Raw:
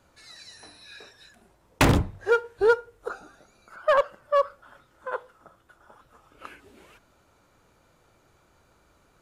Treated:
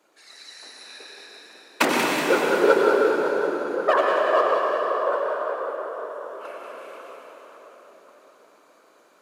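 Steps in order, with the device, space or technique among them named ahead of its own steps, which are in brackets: two-band feedback delay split 1.4 kHz, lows 546 ms, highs 186 ms, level -6.5 dB; whispering ghost (whisper effect; high-pass 280 Hz 24 dB/octave; reverberation RT60 4.0 s, pre-delay 87 ms, DRR -2 dB)

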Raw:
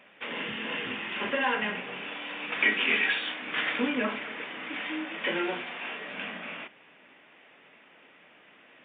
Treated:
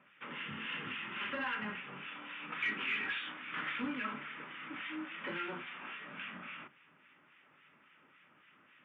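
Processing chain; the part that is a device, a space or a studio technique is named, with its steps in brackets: 0.52–1.44 s: treble shelf 2.1 kHz +4.5 dB; guitar amplifier with harmonic tremolo (harmonic tremolo 3.6 Hz, depth 70%, crossover 1.4 kHz; saturation -23.5 dBFS, distortion -14 dB; cabinet simulation 81–3500 Hz, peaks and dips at 92 Hz +10 dB, 150 Hz +9 dB, 470 Hz -7 dB, 690 Hz -9 dB, 1.3 kHz +8 dB); trim -5.5 dB

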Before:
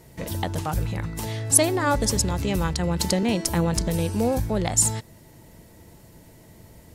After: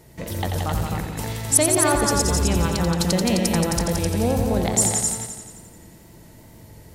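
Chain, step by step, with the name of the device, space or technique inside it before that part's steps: multi-head tape echo (multi-head delay 87 ms, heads all three, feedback 40%, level -6.5 dB; wow and flutter 25 cents)

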